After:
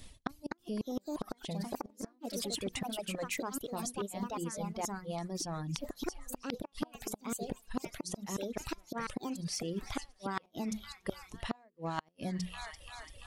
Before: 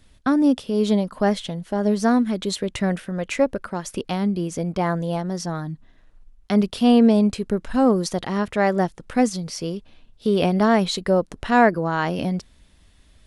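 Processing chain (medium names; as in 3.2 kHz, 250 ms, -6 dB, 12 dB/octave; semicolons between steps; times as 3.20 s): peaking EQ 1.5 kHz -9.5 dB 0.26 oct; hum notches 60/120/180/240/300/360/420/480 Hz; feedback echo behind a high-pass 340 ms, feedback 69%, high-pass 1.5 kHz, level -17.5 dB; inverted gate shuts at -14 dBFS, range -38 dB; treble shelf 5 kHz +6.5 dB; in parallel at -4 dB: overload inside the chain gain 22 dB; on the sum: ever faster or slower copies 294 ms, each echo +3 st, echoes 2; reverse; compression 12:1, threshold -32 dBFS, peak gain reduction 17.5 dB; reverse; reverb removal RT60 1.4 s; trim -1 dB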